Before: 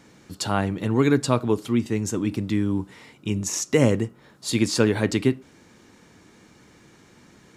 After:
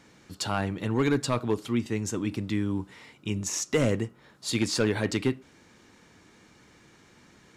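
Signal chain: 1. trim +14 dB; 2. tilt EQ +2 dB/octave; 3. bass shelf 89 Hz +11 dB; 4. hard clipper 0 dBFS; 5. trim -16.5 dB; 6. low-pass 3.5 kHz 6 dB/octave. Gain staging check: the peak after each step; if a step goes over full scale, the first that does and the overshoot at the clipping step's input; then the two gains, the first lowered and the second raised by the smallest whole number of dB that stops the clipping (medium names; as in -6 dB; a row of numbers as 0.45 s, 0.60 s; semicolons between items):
+9.0 dBFS, +8.0 dBFS, +8.5 dBFS, 0.0 dBFS, -16.5 dBFS, -16.5 dBFS; step 1, 8.5 dB; step 1 +5 dB, step 5 -7.5 dB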